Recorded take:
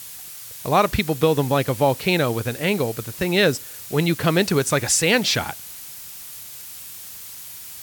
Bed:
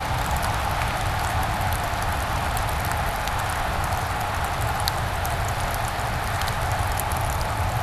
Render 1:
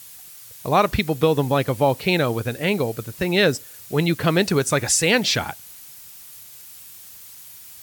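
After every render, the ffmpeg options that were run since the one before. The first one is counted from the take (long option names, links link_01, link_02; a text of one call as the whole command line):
ffmpeg -i in.wav -af "afftdn=noise_reduction=6:noise_floor=-38" out.wav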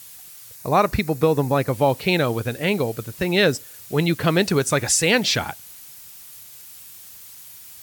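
ffmpeg -i in.wav -filter_complex "[0:a]asettb=1/sr,asplit=3[link_01][link_02][link_03];[link_01]atrim=end=0.554[link_04];[link_02]atrim=start=0.55:end=1.73,asetpts=PTS-STARTPTS,afade=type=in:duration=0.004:curve=qsin,afade=type=out:start_time=1.176:duration=0.004:curve=qsin,equalizer=frequency=3200:width=3.8:gain=-11.5[link_05];[link_03]atrim=start=1.726[link_06];[link_04][link_05]acrossfade=duration=0.004:curve1=hsin:curve2=qsin[link_07];[link_07][link_06]acrossfade=duration=0.004:curve1=qsin:curve2=hsin" out.wav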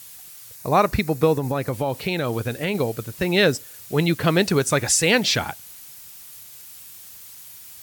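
ffmpeg -i in.wav -filter_complex "[0:a]asettb=1/sr,asplit=3[link_01][link_02][link_03];[link_01]atrim=end=1.364[link_04];[link_02]atrim=start=1.36:end=2.75,asetpts=PTS-STARTPTS,afade=type=in:duration=0.004:curve=qsin,afade=type=out:start_time=1.386:duration=0.004:curve=qsin,acompressor=threshold=-19dB:ratio=6:attack=3.2:release=140:knee=1:detection=peak[link_05];[link_03]atrim=start=2.746[link_06];[link_04][link_05]acrossfade=duration=0.004:curve1=hsin:curve2=qsin[link_07];[link_07][link_06]acrossfade=duration=0.004:curve1=qsin:curve2=hsin" out.wav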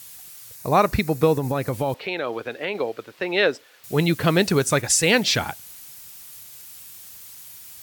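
ffmpeg -i in.wav -filter_complex "[0:a]asettb=1/sr,asplit=3[link_01][link_02][link_03];[link_01]atrim=end=1.944[link_04];[link_02]atrim=start=1.94:end=3.84,asetpts=PTS-STARTPTS,afade=type=in:duration=0.004:curve=qsin,afade=type=out:start_time=1.896:duration=0.004:curve=qsin,acrossover=split=300 4200:gain=0.0794 1 0.1[link_05][link_06][link_07];[link_05][link_06][link_07]amix=inputs=3:normalize=0[link_08];[link_03]atrim=start=3.836[link_09];[link_04][link_08]acrossfade=duration=0.004:curve1=hsin:curve2=qsin[link_10];[link_10][link_09]acrossfade=duration=0.004:curve1=qsin:curve2=hsin,asplit=3[link_11][link_12][link_13];[link_11]afade=type=out:start_time=4.8:duration=0.02[link_14];[link_12]agate=range=-33dB:threshold=-23dB:ratio=3:release=100:detection=peak,afade=type=in:start_time=4.8:duration=0.02,afade=type=out:start_time=5.29:duration=0.02[link_15];[link_13]afade=type=in:start_time=5.29:duration=0.02[link_16];[link_14][link_15][link_16]amix=inputs=3:normalize=0" out.wav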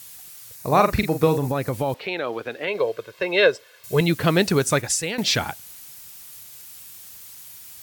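ffmpeg -i in.wav -filter_complex "[0:a]asettb=1/sr,asplit=3[link_01][link_02][link_03];[link_01]atrim=end=0.634[link_04];[link_02]atrim=start=0.63:end=1.48,asetpts=PTS-STARTPTS,afade=type=in:duration=0.004:curve=qsin,afade=type=out:start_time=0.846:duration=0.004:curve=qsin,asplit=2[link_05][link_06];[link_06]adelay=43,volume=-8dB[link_07];[link_05][link_07]amix=inputs=2:normalize=0,atrim=end_sample=37485[link_08];[link_03]atrim=start=1.476[link_09];[link_04][link_08]acrossfade=duration=0.004:curve1=hsin:curve2=qsin[link_10];[link_10][link_09]acrossfade=duration=0.004:curve1=qsin:curve2=hsin,asettb=1/sr,asplit=3[link_11][link_12][link_13];[link_11]atrim=end=2.674[link_14];[link_12]atrim=start=2.67:end=4.01,asetpts=PTS-STARTPTS,afade=type=in:duration=0.004:curve=qsin,afade=type=out:start_time=1.336:duration=0.004:curve=qsin,aecho=1:1:1.9:0.69,atrim=end_sample=59094[link_15];[link_13]atrim=start=4.006[link_16];[link_14][link_15]acrossfade=duration=0.004:curve1=hsin:curve2=qsin[link_17];[link_17][link_16]acrossfade=duration=0.004:curve1=qsin:curve2=hsin,asplit=2[link_18][link_19];[link_18]atrim=end=5.18,asetpts=PTS-STARTPTS,afade=type=out:start_time=4.75:duration=0.43:silence=0.158489[link_20];[link_19]atrim=start=5.18,asetpts=PTS-STARTPTS,afade=type=in:duration=0.004:curve=hsin:silence=0.158489[link_21];[link_20][link_21]concat=n=2:v=0:a=1" out.wav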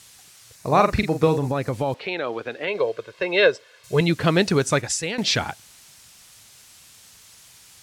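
ffmpeg -i in.wav -af "lowpass=7800" out.wav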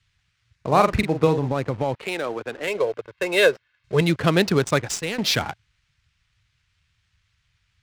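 ffmpeg -i in.wav -filter_complex "[0:a]acrossover=split=120|1600|4600[link_01][link_02][link_03][link_04];[link_02]acrusher=bits=6:mix=0:aa=0.000001[link_05];[link_01][link_05][link_03][link_04]amix=inputs=4:normalize=0,adynamicsmooth=sensitivity=6:basefreq=1100" out.wav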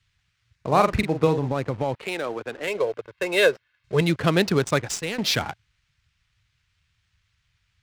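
ffmpeg -i in.wav -af "volume=-1.5dB" out.wav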